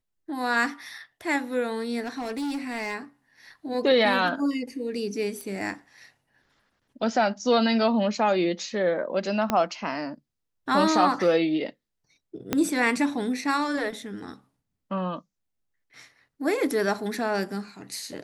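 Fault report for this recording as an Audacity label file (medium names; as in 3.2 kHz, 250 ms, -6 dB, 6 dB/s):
2.010000	2.950000	clipped -27 dBFS
5.410000	5.410000	pop -22 dBFS
9.500000	9.500000	pop -10 dBFS
12.530000	12.530000	pop -9 dBFS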